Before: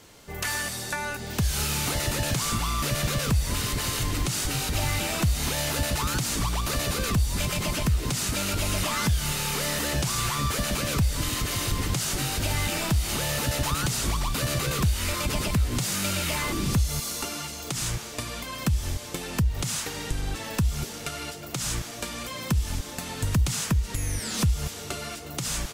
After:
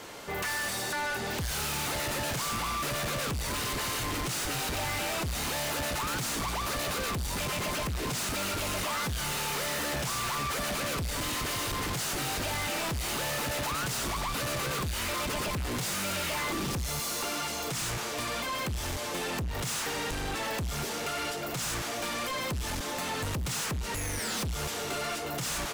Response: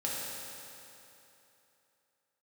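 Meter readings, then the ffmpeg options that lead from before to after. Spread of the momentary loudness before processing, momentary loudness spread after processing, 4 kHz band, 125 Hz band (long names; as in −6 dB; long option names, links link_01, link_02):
7 LU, 2 LU, −3.0 dB, −9.5 dB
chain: -filter_complex "[0:a]asplit=2[link_01][link_02];[link_02]highpass=frequency=720:poles=1,volume=18dB,asoftclip=type=tanh:threshold=-14dB[link_03];[link_01][link_03]amix=inputs=2:normalize=0,lowpass=frequency=1300:poles=1,volume=-6dB,highshelf=frequency=8900:gain=11.5,asoftclip=type=tanh:threshold=-32dB,volume=2dB"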